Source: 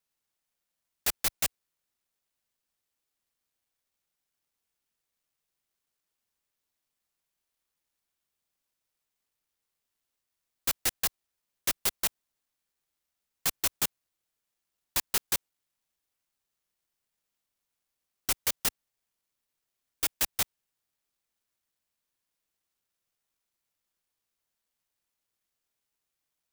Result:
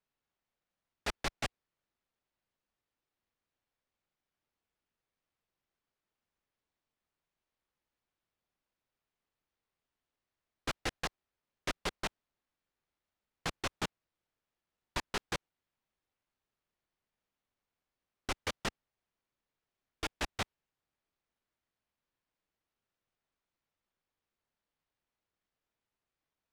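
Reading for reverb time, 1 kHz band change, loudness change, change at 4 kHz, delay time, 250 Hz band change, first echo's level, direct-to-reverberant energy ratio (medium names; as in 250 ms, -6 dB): no reverb, +0.5 dB, -9.5 dB, -6.5 dB, no echo, +2.5 dB, no echo, no reverb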